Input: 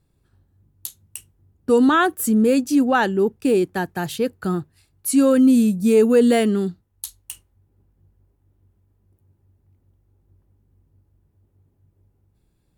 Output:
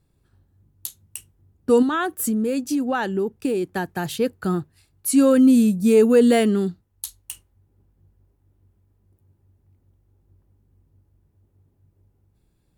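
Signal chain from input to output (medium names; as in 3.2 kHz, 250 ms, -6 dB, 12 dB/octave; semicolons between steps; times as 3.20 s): 1.82–4.05 s: compression, threshold -20 dBFS, peak gain reduction 8 dB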